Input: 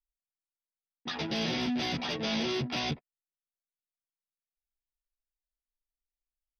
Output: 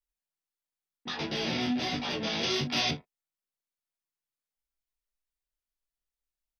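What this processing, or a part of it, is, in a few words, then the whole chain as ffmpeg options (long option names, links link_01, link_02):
double-tracked vocal: -filter_complex "[0:a]asplit=2[link_01][link_02];[link_02]adelay=34,volume=-11.5dB[link_03];[link_01][link_03]amix=inputs=2:normalize=0,flanger=delay=20:depth=4.7:speed=1.5,asettb=1/sr,asplit=3[link_04][link_05][link_06];[link_04]atrim=end=2.434[link_07];[link_05]atrim=start=2.43:end=2.91,asetpts=PTS-STARTPTS,afade=type=in:duration=0.004:curve=qsin,afade=type=out:start_time=0.476:duration=0.004:curve=qsin,highshelf=frequency=2700:gain=8.5[link_08];[link_06]atrim=start=2.906[link_09];[link_07][link_08]acrossfade=duration=0.004:curve1=hsin:curve2=qsin[link_10];[link_10][link_09]acrossfade=duration=0.004:curve1=qsin:curve2=hsin,volume=3.5dB"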